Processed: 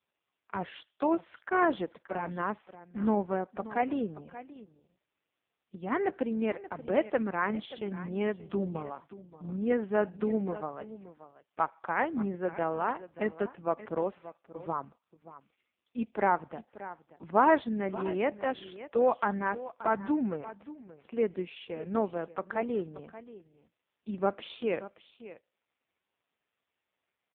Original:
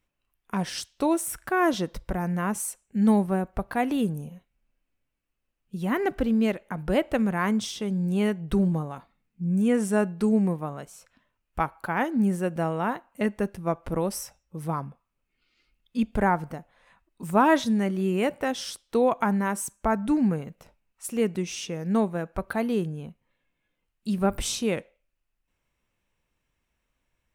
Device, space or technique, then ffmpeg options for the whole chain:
satellite phone: -af "highpass=320,lowpass=3200,aecho=1:1:580:0.168,volume=-1.5dB" -ar 8000 -c:a libopencore_amrnb -b:a 4750

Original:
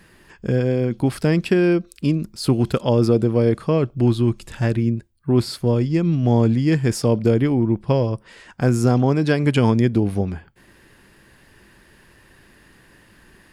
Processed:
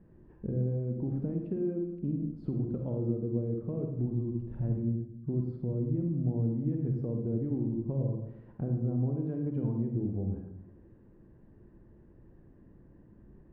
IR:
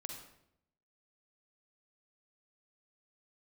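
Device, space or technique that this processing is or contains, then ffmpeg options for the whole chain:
television next door: -filter_complex "[0:a]acompressor=threshold=-27dB:ratio=5,lowpass=430[link_01];[1:a]atrim=start_sample=2205[link_02];[link_01][link_02]afir=irnorm=-1:irlink=0"

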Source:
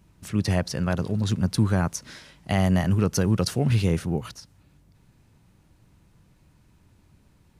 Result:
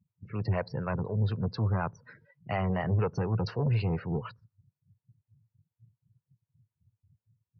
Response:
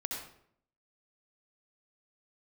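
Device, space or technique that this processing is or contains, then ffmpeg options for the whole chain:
guitar amplifier with harmonic tremolo: -filter_complex "[0:a]acrossover=split=440[link_01][link_02];[link_01]aeval=exprs='val(0)*(1-0.7/2+0.7/2*cos(2*PI*4.1*n/s))':channel_layout=same[link_03];[link_02]aeval=exprs='val(0)*(1-0.7/2-0.7/2*cos(2*PI*4.1*n/s))':channel_layout=same[link_04];[link_03][link_04]amix=inputs=2:normalize=0,asoftclip=type=tanh:threshold=-23dB,highpass=96,equalizer=frequency=110:width_type=q:width=4:gain=7,equalizer=frequency=200:width_type=q:width=4:gain=-3,equalizer=frequency=290:width_type=q:width=4:gain=-6,equalizer=frequency=470:width_type=q:width=4:gain=6,equalizer=frequency=960:width_type=q:width=4:gain=4,equalizer=frequency=3400:width_type=q:width=4:gain=-9,lowpass=frequency=4400:width=0.5412,lowpass=frequency=4400:width=1.3066,afftdn=noise_reduction=34:noise_floor=-45"

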